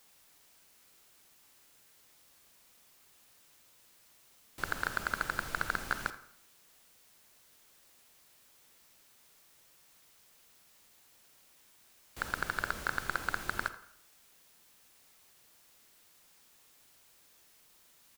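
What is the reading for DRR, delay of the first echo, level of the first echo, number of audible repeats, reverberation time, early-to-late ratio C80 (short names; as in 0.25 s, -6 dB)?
11.0 dB, 83 ms, -18.0 dB, 1, 0.65 s, 15.0 dB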